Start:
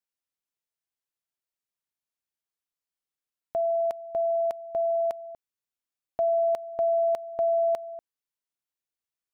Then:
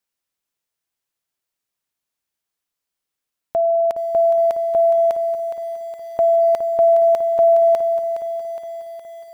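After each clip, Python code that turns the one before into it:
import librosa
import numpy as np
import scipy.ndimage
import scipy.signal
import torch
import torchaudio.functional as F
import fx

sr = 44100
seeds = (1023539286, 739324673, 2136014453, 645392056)

y = fx.echo_crushed(x, sr, ms=415, feedback_pct=55, bits=9, wet_db=-10)
y = y * 10.0 ** (8.5 / 20.0)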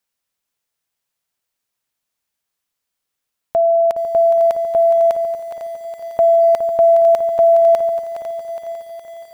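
y = fx.peak_eq(x, sr, hz=340.0, db=-5.5, octaves=0.31)
y = fx.echo_feedback(y, sr, ms=501, feedback_pct=36, wet_db=-11.0)
y = y * 10.0 ** (3.5 / 20.0)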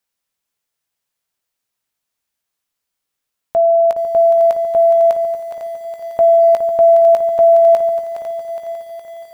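y = fx.doubler(x, sr, ms=18.0, db=-11.5)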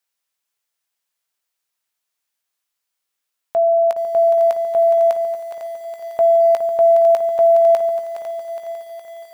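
y = fx.low_shelf(x, sr, hz=380.0, db=-12.0)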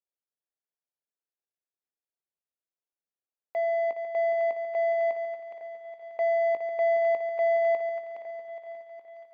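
y = scipy.ndimage.median_filter(x, 41, mode='constant')
y = fx.bandpass_edges(y, sr, low_hz=390.0, high_hz=2200.0)
y = y * 10.0 ** (-8.0 / 20.0)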